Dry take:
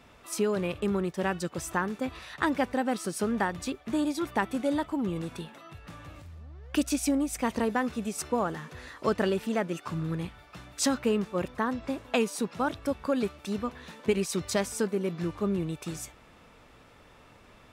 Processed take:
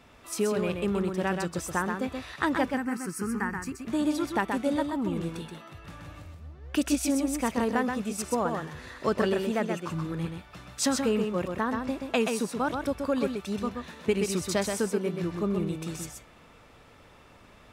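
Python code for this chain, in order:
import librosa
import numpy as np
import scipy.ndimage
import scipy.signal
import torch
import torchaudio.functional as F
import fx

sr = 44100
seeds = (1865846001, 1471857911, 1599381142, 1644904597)

p1 = fx.fixed_phaser(x, sr, hz=1500.0, stages=4, at=(2.72, 3.79))
y = p1 + fx.echo_single(p1, sr, ms=128, db=-5.0, dry=0)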